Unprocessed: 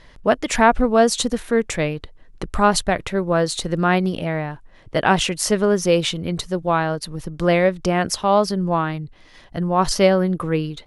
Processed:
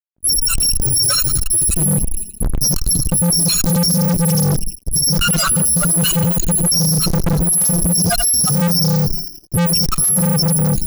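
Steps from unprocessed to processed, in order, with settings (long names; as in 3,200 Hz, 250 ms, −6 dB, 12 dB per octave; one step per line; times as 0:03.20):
samples in bit-reversed order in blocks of 128 samples
noise gate with hold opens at −33 dBFS
high-shelf EQ 10,000 Hz −3 dB
downward compressor 10 to 1, threshold −20 dBFS, peak gain reduction 11 dB
brickwall limiter −17 dBFS, peak gain reduction 11 dB
spectral peaks only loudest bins 4
on a send: feedback echo with a high-pass in the loop 84 ms, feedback 67%, high-pass 390 Hz, level −13.5 dB
on the sum: fuzz pedal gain 52 dB, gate −59 dBFS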